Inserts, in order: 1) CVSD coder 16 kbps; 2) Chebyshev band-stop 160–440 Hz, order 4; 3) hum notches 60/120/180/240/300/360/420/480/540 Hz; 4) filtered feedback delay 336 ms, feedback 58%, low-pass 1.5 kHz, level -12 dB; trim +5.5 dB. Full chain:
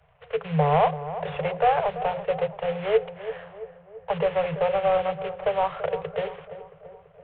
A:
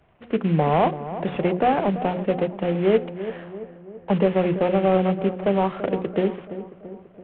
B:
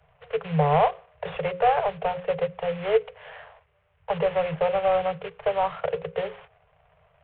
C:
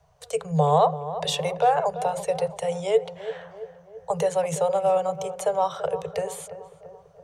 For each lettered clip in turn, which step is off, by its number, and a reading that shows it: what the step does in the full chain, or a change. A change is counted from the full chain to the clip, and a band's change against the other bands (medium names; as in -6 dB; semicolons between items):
2, 250 Hz band +12.5 dB; 4, echo-to-direct -14.0 dB to none; 1, 4 kHz band +5.5 dB